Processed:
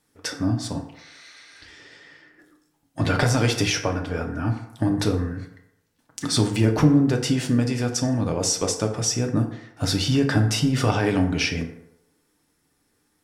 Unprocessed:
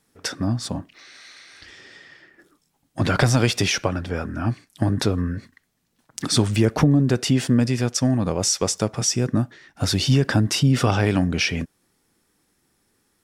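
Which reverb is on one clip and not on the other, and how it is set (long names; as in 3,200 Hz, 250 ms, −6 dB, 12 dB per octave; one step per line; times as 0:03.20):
feedback delay network reverb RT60 0.85 s, low-frequency decay 0.75×, high-frequency decay 0.5×, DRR 3 dB
level −3 dB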